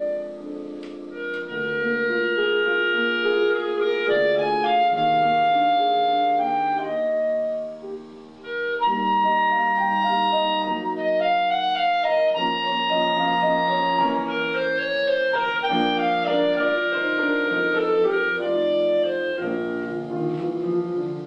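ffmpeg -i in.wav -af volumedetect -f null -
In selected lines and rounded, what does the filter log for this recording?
mean_volume: -22.0 dB
max_volume: -10.0 dB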